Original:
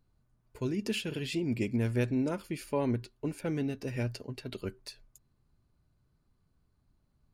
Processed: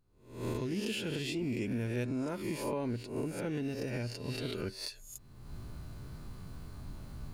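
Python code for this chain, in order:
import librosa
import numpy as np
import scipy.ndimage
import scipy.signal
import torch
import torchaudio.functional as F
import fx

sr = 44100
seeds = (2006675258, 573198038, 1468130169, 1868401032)

p1 = fx.spec_swells(x, sr, rise_s=0.7)
p2 = fx.recorder_agc(p1, sr, target_db=-21.0, rise_db_per_s=38.0, max_gain_db=30)
p3 = 10.0 ** (-29.0 / 20.0) * np.tanh(p2 / 10.0 ** (-29.0 / 20.0))
p4 = p2 + (p3 * 10.0 ** (-12.0 / 20.0))
y = p4 * 10.0 ** (-7.5 / 20.0)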